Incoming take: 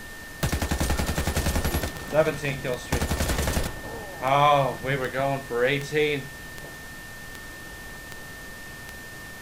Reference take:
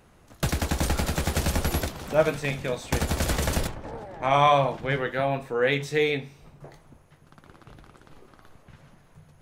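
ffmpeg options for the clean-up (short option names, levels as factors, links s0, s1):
-af "adeclick=t=4,bandreject=f=1800:w=30,afftdn=nr=15:nf=-40"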